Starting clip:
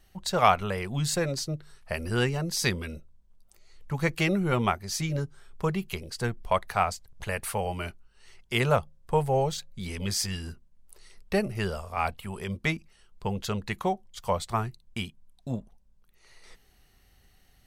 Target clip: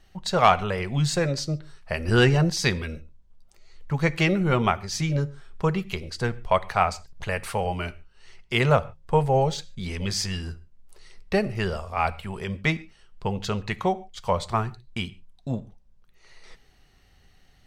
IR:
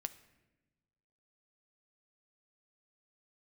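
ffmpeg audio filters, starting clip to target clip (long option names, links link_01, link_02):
-filter_complex "[0:a]volume=10dB,asoftclip=hard,volume=-10dB,asplit=2[link_01][link_02];[1:a]atrim=start_sample=2205,afade=type=out:start_time=0.2:duration=0.01,atrim=end_sample=9261,lowpass=7400[link_03];[link_02][link_03]afir=irnorm=-1:irlink=0,volume=8.5dB[link_04];[link_01][link_04]amix=inputs=2:normalize=0,asettb=1/sr,asplit=3[link_05][link_06][link_07];[link_05]atrim=end=2.084[link_08];[link_06]atrim=start=2.08:end=2.5,asetpts=PTS-STARTPTS,afade=type=in:duration=0.004:curve=qsin,afade=type=out:start_time=0.416:duration=0.004:curve=qsin,acontrast=40[link_09];[link_07]atrim=start=2.496[link_10];[link_08][link_09]acrossfade=duration=0.004:curve1=hsin:curve2=qsin[link_11];[link_11][link_10]acrossfade=duration=0.004:curve1=qsin:curve2=hsin,volume=-6dB"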